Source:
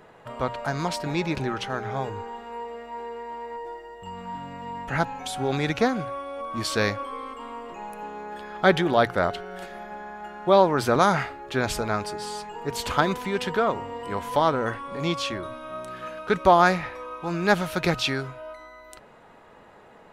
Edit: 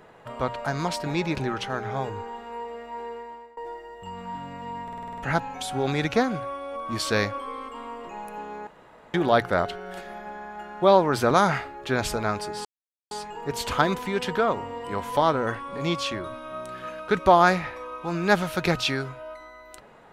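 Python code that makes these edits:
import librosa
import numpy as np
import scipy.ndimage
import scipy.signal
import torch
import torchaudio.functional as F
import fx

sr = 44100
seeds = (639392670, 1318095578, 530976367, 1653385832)

y = fx.edit(x, sr, fx.fade_out_to(start_s=3.11, length_s=0.46, floor_db=-22.0),
    fx.stutter(start_s=4.83, slice_s=0.05, count=8),
    fx.room_tone_fill(start_s=8.32, length_s=0.47),
    fx.insert_silence(at_s=12.3, length_s=0.46), tone=tone)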